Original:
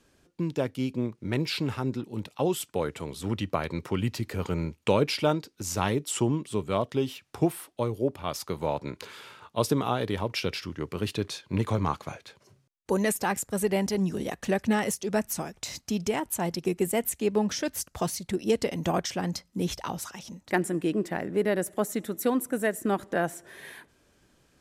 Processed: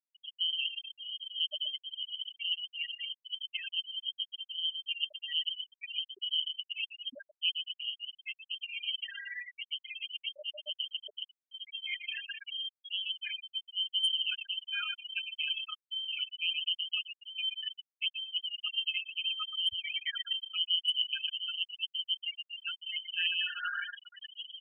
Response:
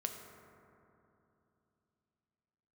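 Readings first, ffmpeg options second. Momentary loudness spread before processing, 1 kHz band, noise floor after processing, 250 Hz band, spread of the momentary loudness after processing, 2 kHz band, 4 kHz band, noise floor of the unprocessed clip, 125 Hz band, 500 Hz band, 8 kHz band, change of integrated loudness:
8 LU, −20.0 dB, below −85 dBFS, below −40 dB, 9 LU, −1.5 dB, +9.5 dB, −66 dBFS, below −40 dB, −34.0 dB, below −25 dB, −4.5 dB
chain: -filter_complex "[0:a]aeval=exprs='val(0)+0.5*0.0422*sgn(val(0))':channel_layout=same,areverse,acompressor=threshold=-30dB:ratio=10,areverse,asuperstop=centerf=2400:order=20:qfactor=5,aecho=1:1:5.9:0.87,aecho=1:1:120|228|325.2|412.7|491.4:0.631|0.398|0.251|0.158|0.1,lowpass=frequency=2800:width_type=q:width=0.5098,lowpass=frequency=2800:width_type=q:width=0.6013,lowpass=frequency=2800:width_type=q:width=0.9,lowpass=frequency=2800:width_type=q:width=2.563,afreqshift=-3300,equalizer=frequency=130:width=0.88:gain=8.5,adynamicsmooth=sensitivity=2.5:basefreq=1200,asplit=2[link_01][link_02];[1:a]atrim=start_sample=2205,asetrate=66150,aresample=44100,lowshelf=frequency=290:gain=-8[link_03];[link_02][link_03]afir=irnorm=-1:irlink=0,volume=-17.5dB[link_04];[link_01][link_04]amix=inputs=2:normalize=0,acrusher=bits=6:mix=0:aa=0.5,afftfilt=real='re*gte(hypot(re,im),0.112)':imag='im*gte(hypot(re,im),0.112)':win_size=1024:overlap=0.75,volume=-3dB"

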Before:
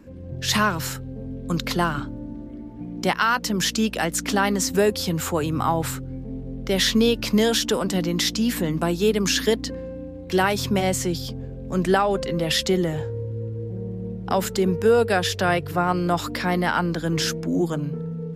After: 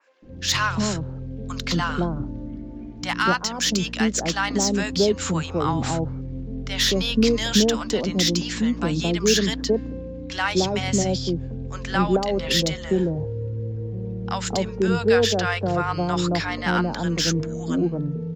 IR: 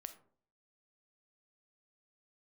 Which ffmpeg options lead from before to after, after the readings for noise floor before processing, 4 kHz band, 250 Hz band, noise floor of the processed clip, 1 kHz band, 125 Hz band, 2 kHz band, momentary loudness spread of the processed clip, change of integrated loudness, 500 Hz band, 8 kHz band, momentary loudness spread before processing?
−36 dBFS, +1.5 dB, +0.5 dB, −35 dBFS, −2.0 dB, +1.0 dB, −0.5 dB, 11 LU, 0.0 dB, −1.0 dB, +1.0 dB, 13 LU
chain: -filter_complex "[0:a]aresample=16000,aresample=44100,lowshelf=frequency=62:gain=6,acrossover=split=220|1400[link_01][link_02][link_03];[link_03]asoftclip=type=tanh:threshold=-17dB[link_04];[link_01][link_02][link_04]amix=inputs=3:normalize=0,acrossover=split=780[link_05][link_06];[link_05]adelay=220[link_07];[link_07][link_06]amix=inputs=2:normalize=0,adynamicequalizer=threshold=0.0158:dfrequency=2900:dqfactor=0.7:tfrequency=2900:tqfactor=0.7:attack=5:release=100:ratio=0.375:range=2:mode=boostabove:tftype=highshelf"

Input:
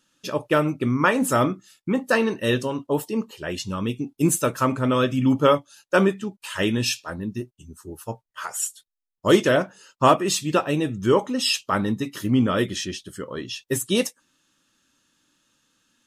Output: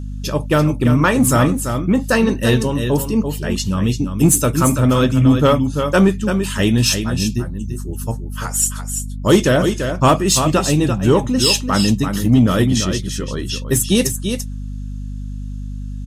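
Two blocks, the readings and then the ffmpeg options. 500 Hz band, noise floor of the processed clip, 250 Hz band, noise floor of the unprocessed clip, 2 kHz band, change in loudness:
+4.0 dB, −27 dBFS, +8.0 dB, −84 dBFS, +3.5 dB, +6.5 dB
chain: -filter_complex "[0:a]bass=frequency=250:gain=9,treble=frequency=4000:gain=7,aecho=1:1:339:0.398,aeval=exprs='val(0)+0.0355*(sin(2*PI*50*n/s)+sin(2*PI*2*50*n/s)/2+sin(2*PI*3*50*n/s)/3+sin(2*PI*4*50*n/s)/4+sin(2*PI*5*50*n/s)/5)':channel_layout=same,asplit=2[link_01][link_02];[link_02]acontrast=88,volume=-1dB[link_03];[link_01][link_03]amix=inputs=2:normalize=0,volume=-6dB"

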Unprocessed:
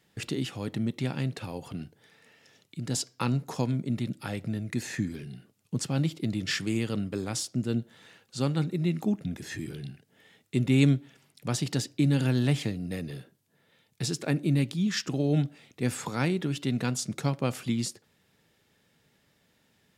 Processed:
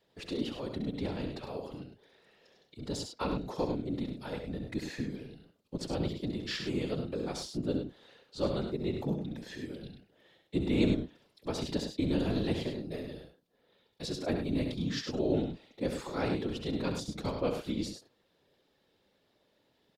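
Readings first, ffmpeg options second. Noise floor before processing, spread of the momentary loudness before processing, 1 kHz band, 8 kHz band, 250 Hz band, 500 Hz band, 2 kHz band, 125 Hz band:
−69 dBFS, 13 LU, −2.5 dB, −12.0 dB, −4.5 dB, +0.5 dB, −7.0 dB, −10.0 dB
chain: -filter_complex "[0:a]equalizer=frequency=250:width_type=o:width=1:gain=5,equalizer=frequency=500:width_type=o:width=1:gain=12,equalizer=frequency=1000:width_type=o:width=1:gain=6,equalizer=frequency=4000:width_type=o:width=1:gain=10,equalizer=frequency=8000:width_type=o:width=1:gain=-5,afftfilt=real='hypot(re,im)*cos(2*PI*random(0))':imag='hypot(re,im)*sin(2*PI*random(1))':win_size=512:overlap=0.75,asplit=2[link_01][link_02];[link_02]aecho=0:1:67.06|102:0.398|0.398[link_03];[link_01][link_03]amix=inputs=2:normalize=0,volume=-6.5dB"

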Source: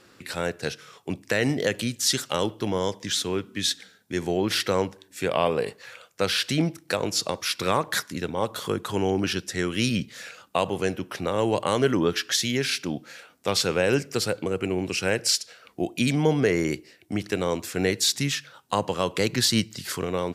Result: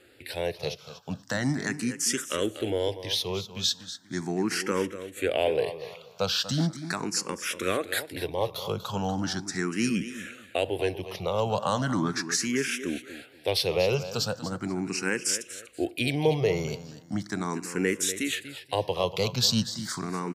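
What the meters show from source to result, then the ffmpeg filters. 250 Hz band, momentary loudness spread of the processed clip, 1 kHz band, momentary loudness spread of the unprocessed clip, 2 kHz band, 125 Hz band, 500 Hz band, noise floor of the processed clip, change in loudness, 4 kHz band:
−3.0 dB, 9 LU, −3.5 dB, 10 LU, −3.0 dB, −2.5 dB, −3.0 dB, −53 dBFS, −3.0 dB, −3.5 dB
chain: -filter_complex "[0:a]asplit=2[link_01][link_02];[link_02]aecho=0:1:241|482|723:0.237|0.0617|0.016[link_03];[link_01][link_03]amix=inputs=2:normalize=0,asplit=2[link_04][link_05];[link_05]afreqshift=0.38[link_06];[link_04][link_06]amix=inputs=2:normalize=1"

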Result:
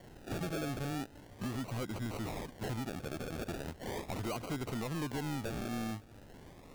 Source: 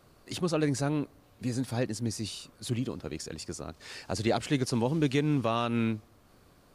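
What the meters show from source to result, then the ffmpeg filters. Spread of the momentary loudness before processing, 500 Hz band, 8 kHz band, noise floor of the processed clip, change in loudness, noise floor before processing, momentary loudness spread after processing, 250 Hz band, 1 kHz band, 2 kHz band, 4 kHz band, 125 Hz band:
12 LU, −9.0 dB, −9.0 dB, −55 dBFS, −8.0 dB, −61 dBFS, 6 LU, −8.5 dB, −6.5 dB, −5.0 dB, −8.5 dB, −7.5 dB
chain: -af "acompressor=threshold=-37dB:ratio=6,acrusher=samples=35:mix=1:aa=0.000001:lfo=1:lforange=21:lforate=0.39,asoftclip=type=tanh:threshold=-39dB,volume=6.5dB"

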